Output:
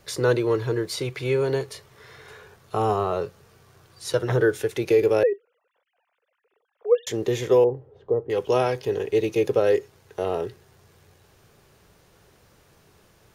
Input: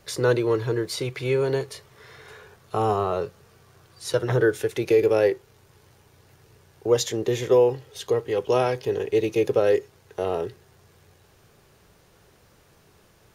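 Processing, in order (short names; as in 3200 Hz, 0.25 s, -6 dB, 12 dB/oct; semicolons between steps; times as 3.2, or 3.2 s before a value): 5.23–7.07 sine-wave speech; 7.64–8.3 Chebyshev low-pass 600 Hz, order 2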